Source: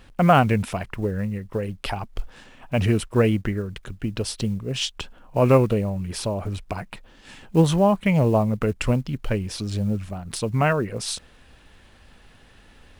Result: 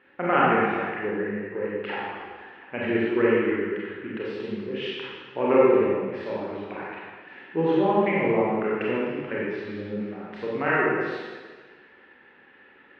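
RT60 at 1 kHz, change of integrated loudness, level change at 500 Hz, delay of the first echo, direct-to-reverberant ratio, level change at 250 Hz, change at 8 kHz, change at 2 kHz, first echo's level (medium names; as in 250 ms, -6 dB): 1.5 s, -2.0 dB, +0.5 dB, no echo, -7.0 dB, -3.0 dB, under -30 dB, +3.5 dB, no echo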